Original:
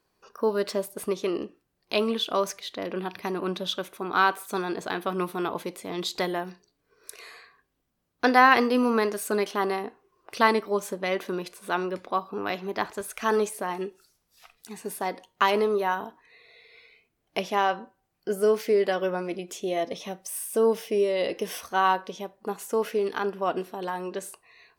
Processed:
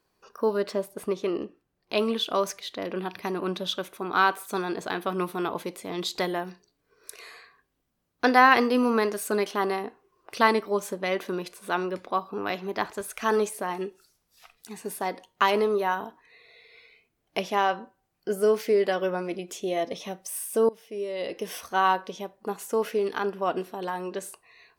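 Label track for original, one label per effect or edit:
0.570000	1.970000	high shelf 3500 Hz -7.5 dB
20.690000	21.720000	fade in, from -22 dB

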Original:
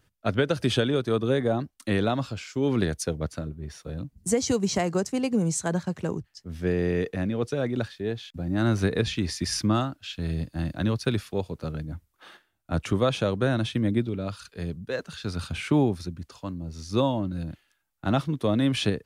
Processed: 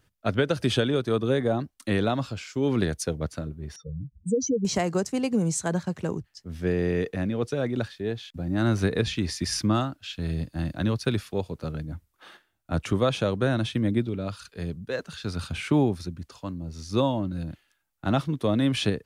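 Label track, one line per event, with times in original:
3.760000	4.650000	spectral contrast raised exponent 3.1

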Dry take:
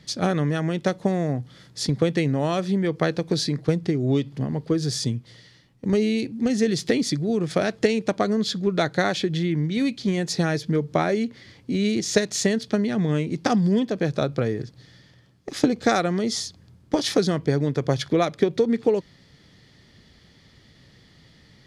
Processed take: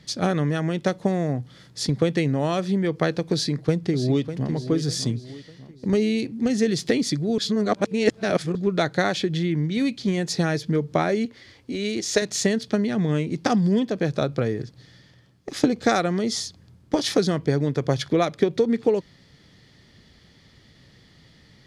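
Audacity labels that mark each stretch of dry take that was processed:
3.330000	4.510000	echo throw 0.6 s, feedback 40%, level -10.5 dB
7.380000	8.550000	reverse
11.250000	12.220000	bell 160 Hz -13.5 dB

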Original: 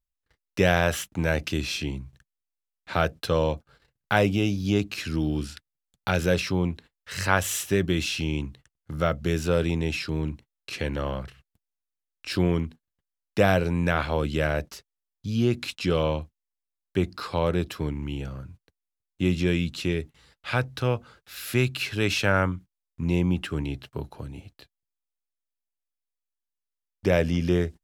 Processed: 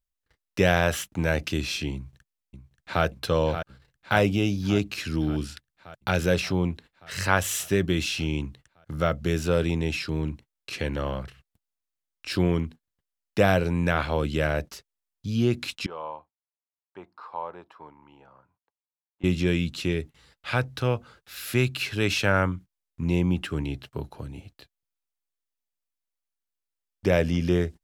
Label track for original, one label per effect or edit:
1.950000	3.040000	echo throw 0.58 s, feedback 70%, level -9 dB
15.860000	19.240000	band-pass 930 Hz, Q 3.8

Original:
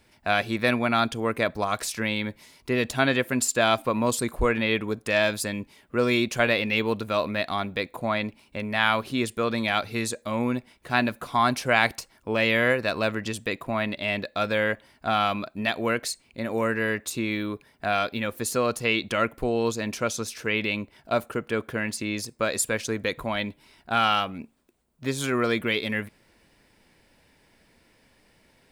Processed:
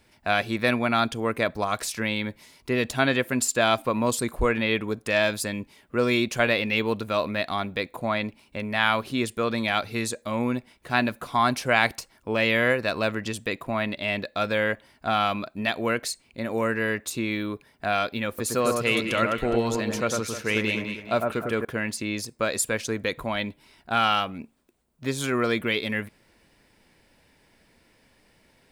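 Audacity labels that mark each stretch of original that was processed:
18.280000	21.650000	echo with dull and thin repeats by turns 0.103 s, split 1800 Hz, feedback 59%, level -3 dB

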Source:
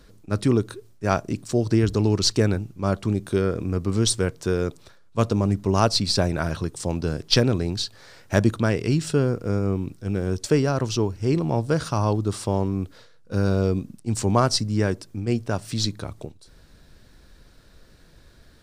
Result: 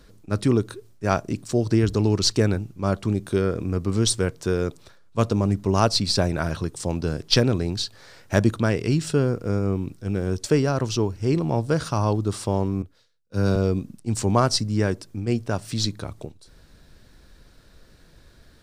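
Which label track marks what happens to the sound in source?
12.820000	13.560000	three-band expander depth 100%

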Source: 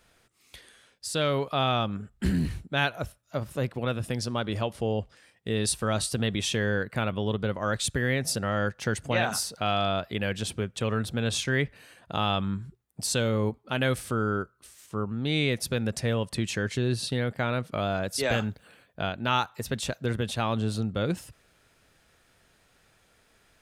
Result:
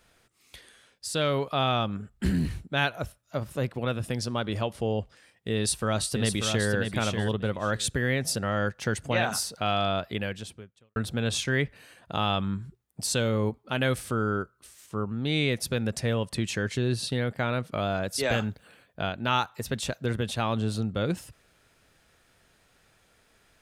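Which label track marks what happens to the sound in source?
5.560000	6.690000	echo throw 0.59 s, feedback 15%, level -5.5 dB
10.140000	10.960000	fade out quadratic

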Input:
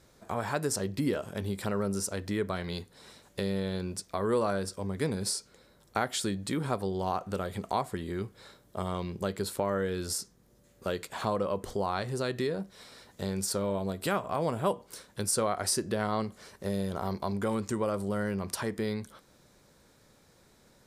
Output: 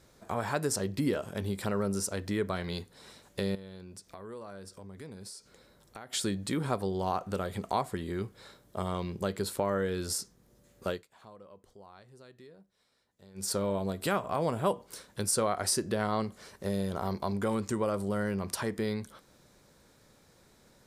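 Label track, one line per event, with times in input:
3.550000	6.130000	compressor 2.5:1, threshold -49 dBFS
10.890000	13.490000	dip -22 dB, fades 0.15 s

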